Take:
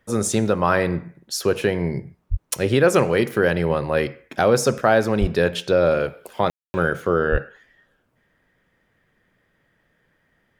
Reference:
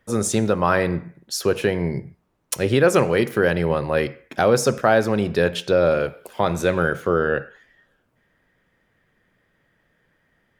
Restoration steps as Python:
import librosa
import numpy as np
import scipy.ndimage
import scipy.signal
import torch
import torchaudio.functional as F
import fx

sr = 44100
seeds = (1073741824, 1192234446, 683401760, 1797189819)

y = fx.fix_deplosive(x, sr, at_s=(2.3, 5.2, 7.31))
y = fx.fix_ambience(y, sr, seeds[0], print_start_s=7.96, print_end_s=8.46, start_s=6.5, end_s=6.74)